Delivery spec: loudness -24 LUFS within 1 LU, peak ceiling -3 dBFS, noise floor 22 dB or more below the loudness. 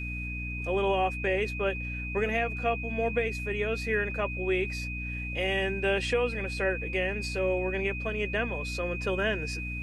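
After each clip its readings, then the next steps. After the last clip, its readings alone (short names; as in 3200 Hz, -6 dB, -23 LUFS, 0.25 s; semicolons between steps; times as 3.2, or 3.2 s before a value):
hum 60 Hz; harmonics up to 300 Hz; hum level -34 dBFS; steady tone 2500 Hz; tone level -36 dBFS; loudness -29.5 LUFS; peak -15.5 dBFS; loudness target -24.0 LUFS
-> notches 60/120/180/240/300 Hz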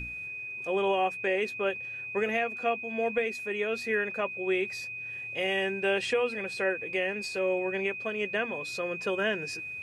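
hum none; steady tone 2500 Hz; tone level -36 dBFS
-> notch 2500 Hz, Q 30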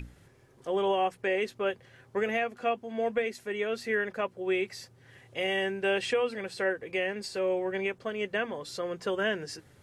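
steady tone none; loudness -31.0 LUFS; peak -17.5 dBFS; loudness target -24.0 LUFS
-> gain +7 dB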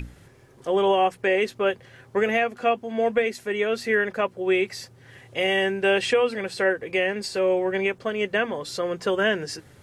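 loudness -24.0 LUFS; peak -10.5 dBFS; noise floor -53 dBFS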